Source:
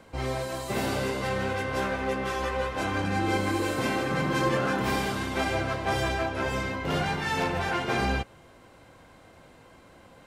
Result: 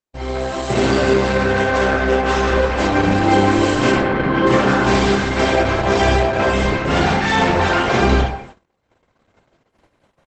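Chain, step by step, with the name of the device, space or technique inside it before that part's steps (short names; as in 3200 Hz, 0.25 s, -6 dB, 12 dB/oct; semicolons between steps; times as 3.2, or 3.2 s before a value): 3.94–4.47 air absorption 330 m; speakerphone in a meeting room (reverb RT60 0.75 s, pre-delay 28 ms, DRR -0.5 dB; speakerphone echo 0.19 s, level -23 dB; AGC gain up to 9 dB; gate -37 dBFS, range -44 dB; gain +1.5 dB; Opus 12 kbps 48000 Hz)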